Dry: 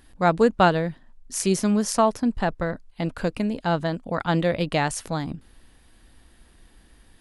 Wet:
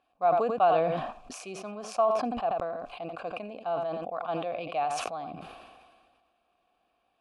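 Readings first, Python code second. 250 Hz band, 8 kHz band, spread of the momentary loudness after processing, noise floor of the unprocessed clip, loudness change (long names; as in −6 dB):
−15.5 dB, −14.5 dB, 16 LU, −56 dBFS, −6.0 dB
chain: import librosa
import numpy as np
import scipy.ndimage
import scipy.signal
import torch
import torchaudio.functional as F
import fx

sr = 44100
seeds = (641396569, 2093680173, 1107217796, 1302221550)

p1 = fx.vowel_filter(x, sr, vowel='a')
p2 = p1 + fx.echo_single(p1, sr, ms=87, db=-16.0, dry=0)
y = fx.sustainer(p2, sr, db_per_s=33.0)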